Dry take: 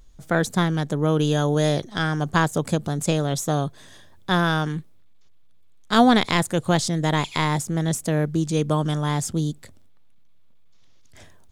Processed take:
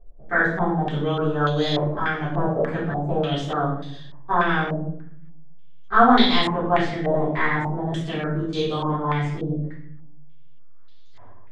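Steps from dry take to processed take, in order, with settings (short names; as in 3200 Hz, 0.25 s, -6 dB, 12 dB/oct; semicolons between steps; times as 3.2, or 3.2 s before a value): flange 0.58 Hz, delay 1.7 ms, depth 6.6 ms, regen -62%; shoebox room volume 160 m³, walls mixed, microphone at 3.7 m; stepped low-pass 3.4 Hz 600–4000 Hz; gain -10.5 dB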